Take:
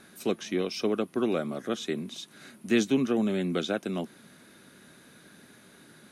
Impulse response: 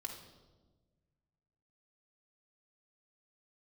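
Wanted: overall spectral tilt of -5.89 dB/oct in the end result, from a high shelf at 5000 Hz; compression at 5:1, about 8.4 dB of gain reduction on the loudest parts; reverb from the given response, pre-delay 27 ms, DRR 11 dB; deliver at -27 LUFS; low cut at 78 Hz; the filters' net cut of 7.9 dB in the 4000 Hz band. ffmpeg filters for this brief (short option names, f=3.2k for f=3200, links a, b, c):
-filter_complex "[0:a]highpass=78,equalizer=f=4k:t=o:g=-7.5,highshelf=f=5k:g=-6,acompressor=threshold=-28dB:ratio=5,asplit=2[a][b];[1:a]atrim=start_sample=2205,adelay=27[c];[b][c]afir=irnorm=-1:irlink=0,volume=-9dB[d];[a][d]amix=inputs=2:normalize=0,volume=7dB"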